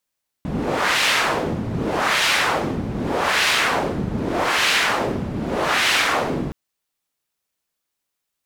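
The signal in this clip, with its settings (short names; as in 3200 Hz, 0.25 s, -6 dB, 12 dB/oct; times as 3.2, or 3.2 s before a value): wind-like swept noise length 6.07 s, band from 170 Hz, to 2600 Hz, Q 1.1, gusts 5, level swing 7 dB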